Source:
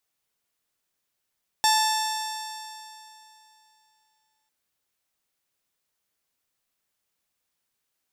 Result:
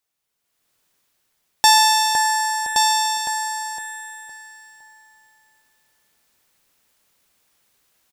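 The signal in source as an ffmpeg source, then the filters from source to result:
-f lavfi -i "aevalsrc='0.112*pow(10,-3*t/2.9)*sin(2*PI*872.18*t)+0.0422*pow(10,-3*t/2.9)*sin(2*PI*1751.38*t)+0.02*pow(10,-3*t/2.9)*sin(2*PI*2644.56*t)+0.0447*pow(10,-3*t/2.9)*sin(2*PI*3558.46*t)+0.0282*pow(10,-3*t/2.9)*sin(2*PI*4499.58*t)+0.0596*pow(10,-3*t/2.9)*sin(2*PI*5474.09*t)+0.0158*pow(10,-3*t/2.9)*sin(2*PI*6487.79*t)+0.0473*pow(10,-3*t/2.9)*sin(2*PI*7546.06*t)+0.0178*pow(10,-3*t/2.9)*sin(2*PI*8653.84*t)+0.0126*pow(10,-3*t/2.9)*sin(2*PI*9815.67*t)+0.0133*pow(10,-3*t/2.9)*sin(2*PI*11035.63*t)+0.0158*pow(10,-3*t/2.9)*sin(2*PI*12317.41*t)':d=2.85:s=44100"
-filter_complex "[0:a]asplit=2[s0][s1];[s1]adelay=511,lowpass=f=4100:p=1,volume=0.501,asplit=2[s2][s3];[s3]adelay=511,lowpass=f=4100:p=1,volume=0.32,asplit=2[s4][s5];[s5]adelay=511,lowpass=f=4100:p=1,volume=0.32,asplit=2[s6][s7];[s7]adelay=511,lowpass=f=4100:p=1,volume=0.32[s8];[s2][s4][s6][s8]amix=inputs=4:normalize=0[s9];[s0][s9]amix=inputs=2:normalize=0,dynaudnorm=f=140:g=9:m=4.47,asplit=2[s10][s11];[s11]aecho=0:1:1121:0.531[s12];[s10][s12]amix=inputs=2:normalize=0"

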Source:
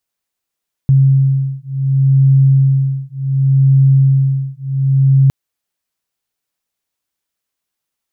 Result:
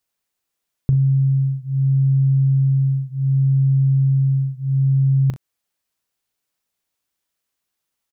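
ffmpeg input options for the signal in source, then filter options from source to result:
-f lavfi -i "aevalsrc='0.266*(sin(2*PI*135*t)+sin(2*PI*135.68*t))':d=4.41:s=44100"
-filter_complex "[0:a]acompressor=threshold=0.178:ratio=6,asplit=2[s0][s1];[s1]aecho=0:1:38|62:0.224|0.133[s2];[s0][s2]amix=inputs=2:normalize=0"

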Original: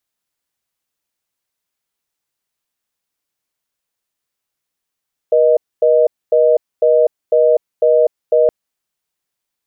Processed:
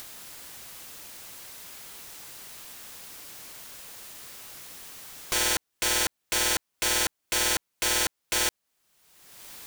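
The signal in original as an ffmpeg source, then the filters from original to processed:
-f lavfi -i "aevalsrc='0.282*(sin(2*PI*480*t)+sin(2*PI*620*t))*clip(min(mod(t,0.5),0.25-mod(t,0.5))/0.005,0,1)':d=3.17:s=44100"
-af "acompressor=mode=upward:threshold=0.158:ratio=2.5,aeval=exprs='(mod(10*val(0)+1,2)-1)/10':c=same"

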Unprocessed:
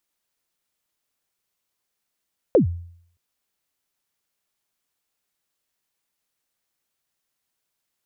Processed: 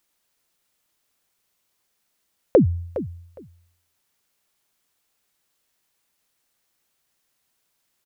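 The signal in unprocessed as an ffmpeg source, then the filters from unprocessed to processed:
-f lavfi -i "aevalsrc='0.355*pow(10,-3*t/0.62)*sin(2*PI*(590*0.113/log(86/590)*(exp(log(86/590)*min(t,0.113)/0.113)-1)+86*max(t-0.113,0)))':d=0.62:s=44100"
-filter_complex "[0:a]asplit=2[s0][s1];[s1]acompressor=threshold=0.0501:ratio=6,volume=1.12[s2];[s0][s2]amix=inputs=2:normalize=0,aecho=1:1:411|822:0.224|0.0358"

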